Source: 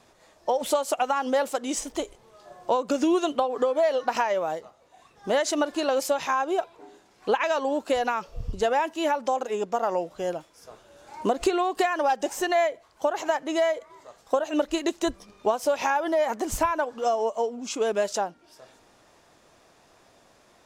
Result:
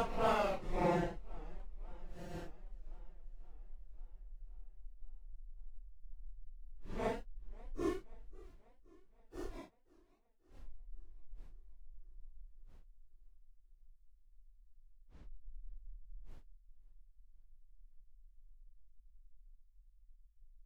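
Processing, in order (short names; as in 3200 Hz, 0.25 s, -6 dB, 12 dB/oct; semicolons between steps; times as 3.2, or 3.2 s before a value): Doppler pass-by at 8.5, 11 m/s, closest 4.3 m; echo 0.32 s -23 dB; backlash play -27 dBFS; Paulstretch 4.5×, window 0.05 s, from 9.53; warbling echo 0.533 s, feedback 60%, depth 192 cents, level -24 dB; gain +8 dB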